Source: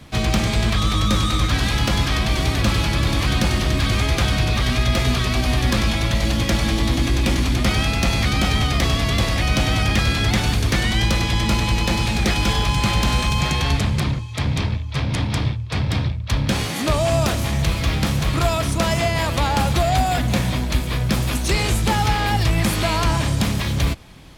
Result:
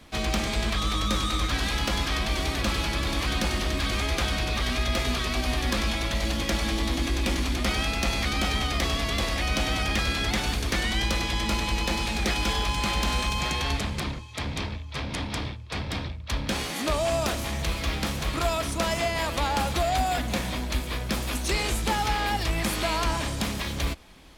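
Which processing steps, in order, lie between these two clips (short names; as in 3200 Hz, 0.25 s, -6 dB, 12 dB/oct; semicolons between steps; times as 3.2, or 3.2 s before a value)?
bell 120 Hz -12.5 dB 0.98 oct; gain -5 dB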